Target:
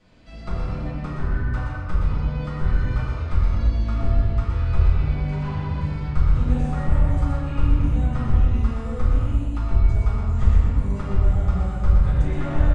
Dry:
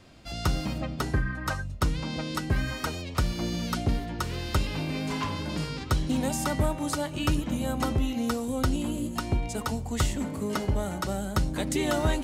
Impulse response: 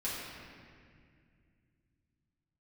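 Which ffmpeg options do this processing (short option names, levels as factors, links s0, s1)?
-filter_complex "[0:a]acrossover=split=2100[s0][s1];[s0]aeval=exprs='clip(val(0),-1,0.0422)':c=same[s2];[s1]acompressor=threshold=0.00316:ratio=4[s3];[s2][s3]amix=inputs=2:normalize=0,asubboost=boost=6:cutoff=97,aresample=22050,aresample=44100,highshelf=f=6000:g=-8.5,aecho=1:1:117:0.596[s4];[1:a]atrim=start_sample=2205,afade=t=out:st=0.39:d=0.01,atrim=end_sample=17640[s5];[s4][s5]afir=irnorm=-1:irlink=0,asetrate=42336,aresample=44100,volume=0.631"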